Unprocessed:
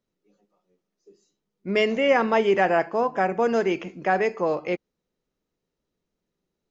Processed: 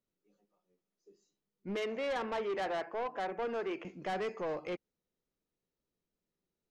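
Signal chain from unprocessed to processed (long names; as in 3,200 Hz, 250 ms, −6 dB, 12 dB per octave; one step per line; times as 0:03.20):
0:01.76–0:03.85: three-way crossover with the lows and the highs turned down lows −13 dB, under 260 Hz, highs −13 dB, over 3,000 Hz
soft clipping −23 dBFS, distortion −9 dB
level −8.5 dB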